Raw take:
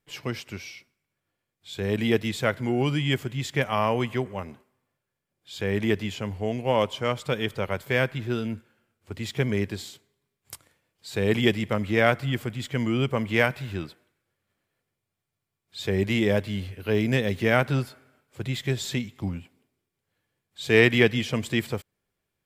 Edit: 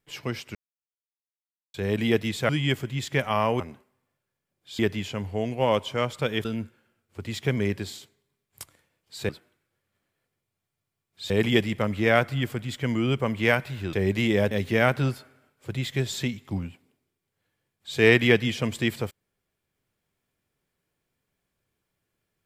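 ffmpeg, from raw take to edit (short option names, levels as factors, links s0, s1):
-filter_complex "[0:a]asplit=11[s0][s1][s2][s3][s4][s5][s6][s7][s8][s9][s10];[s0]atrim=end=0.55,asetpts=PTS-STARTPTS,afade=t=out:st=0.546:d=0.004:c=hsin[s11];[s1]atrim=start=0.55:end=1.74,asetpts=PTS-STARTPTS,volume=0[s12];[s2]atrim=start=1.74:end=2.492,asetpts=PTS-STARTPTS,afade=t=in:d=0.004:c=hsin[s13];[s3]atrim=start=2.908:end=4.022[s14];[s4]atrim=start=4.398:end=5.592[s15];[s5]atrim=start=5.858:end=7.522[s16];[s6]atrim=start=8.368:end=11.212[s17];[s7]atrim=start=13.838:end=15.852[s18];[s8]atrim=start=11.208:end=13.842[s19];[s9]atrim=start=15.848:end=16.432[s20];[s10]atrim=start=17.218[s21];[s11][s12][s13]concat=n=3:v=0:a=1[s22];[s22][s14]acrossfade=d=0.004:c1=hsin:c2=hsin[s23];[s23][s15]acrossfade=d=0.004:c1=hsin:c2=hsin[s24];[s24][s16]acrossfade=d=0.004:c1=hsin:c2=hsin[s25];[s25][s17]acrossfade=d=0.004:c1=hsin:c2=hsin[s26];[s26][s18]acrossfade=d=0.004:c1=hsin:c2=hsin[s27];[s27][s19]acrossfade=d=0.004:c1=hsin:c2=hsin[s28];[s28][s20]acrossfade=d=0.004:c1=hsin:c2=hsin[s29];[s29][s21]acrossfade=d=0.004:c1=hsin:c2=hsin"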